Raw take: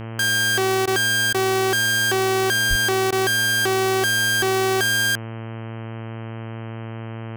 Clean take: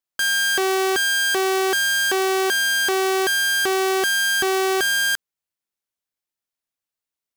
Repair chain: de-hum 113.1 Hz, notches 28; 2.69–2.81 s: high-pass 140 Hz 24 dB/octave; interpolate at 0.86/1.33/3.11 s, 13 ms

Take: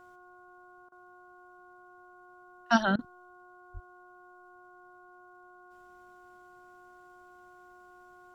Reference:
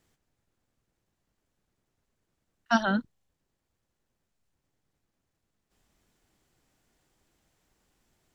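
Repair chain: de-hum 360.7 Hz, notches 4; de-plosive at 3.73 s; interpolate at 0.89/2.96 s, 28 ms

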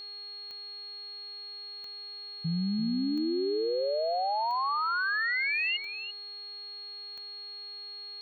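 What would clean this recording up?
de-click; de-hum 408.2 Hz, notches 11; band-stop 4.3 kHz, Q 30; inverse comb 340 ms -10.5 dB

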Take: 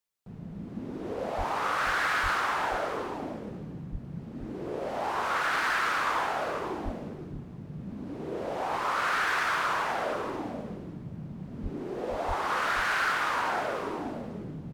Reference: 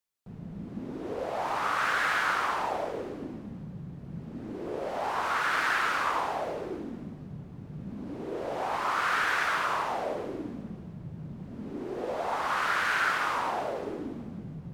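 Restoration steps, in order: clip repair -22 dBFS; de-plosive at 1.37/2.22/3.91/6.84/11.62/12.27 s; inverse comb 480 ms -8.5 dB

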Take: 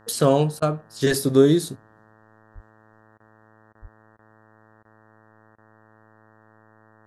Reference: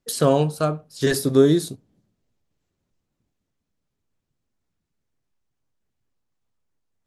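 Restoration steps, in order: de-hum 109.2 Hz, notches 17; de-plosive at 2.54/3.81 s; interpolate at 0.60/3.18/3.73/4.17/4.83/5.56 s, 19 ms

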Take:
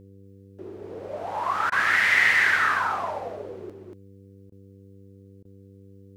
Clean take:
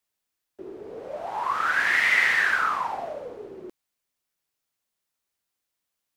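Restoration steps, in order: de-hum 97.9 Hz, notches 5; interpolate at 1.70/4.50/5.43 s, 19 ms; inverse comb 235 ms -4 dB

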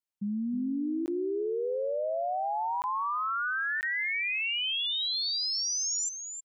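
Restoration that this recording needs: interpolate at 1.06/2.82/3.81 s, 19 ms; inverse comb 315 ms -8.5 dB

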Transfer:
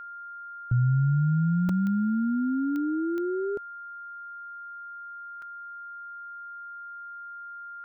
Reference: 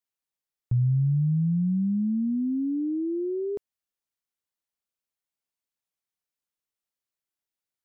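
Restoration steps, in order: de-click; band-stop 1.4 kHz, Q 30; interpolate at 1.69/5.42 s, 3.4 ms

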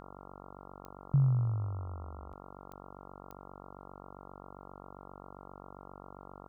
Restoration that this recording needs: de-click; de-hum 47.5 Hz, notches 29

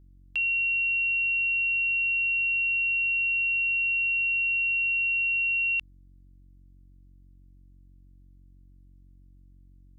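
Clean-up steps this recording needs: de-hum 46.1 Hz, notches 7

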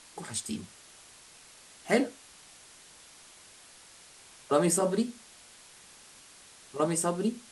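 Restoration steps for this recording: noise print and reduce 21 dB

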